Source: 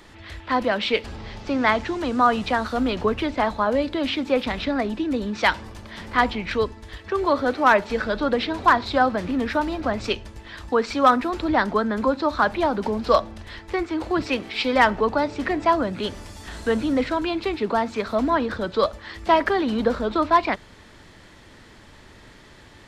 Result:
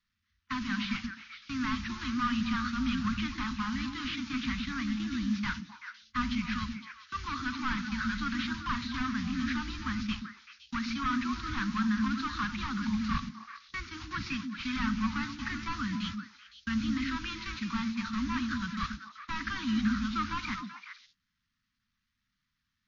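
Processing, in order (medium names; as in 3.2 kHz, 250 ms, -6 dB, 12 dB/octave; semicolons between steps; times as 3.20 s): one-bit delta coder 32 kbps, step -35 dBFS; gate -30 dBFS, range -36 dB; elliptic band-stop 230–1200 Hz, stop band 70 dB; repeats whose band climbs or falls 128 ms, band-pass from 250 Hz, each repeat 1.4 oct, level -1.5 dB; trim -3.5 dB; MP3 32 kbps 16 kHz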